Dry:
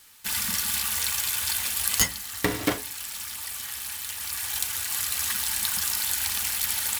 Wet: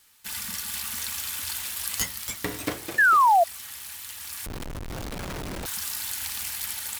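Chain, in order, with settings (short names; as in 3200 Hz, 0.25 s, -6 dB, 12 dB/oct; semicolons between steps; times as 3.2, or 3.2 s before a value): echoes that change speed 0.502 s, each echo +2 st, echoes 2, each echo -6 dB; 2.98–3.44 painted sound fall 650–1800 Hz -11 dBFS; 4.46–5.66 Schmitt trigger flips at -20.5 dBFS; gain -6 dB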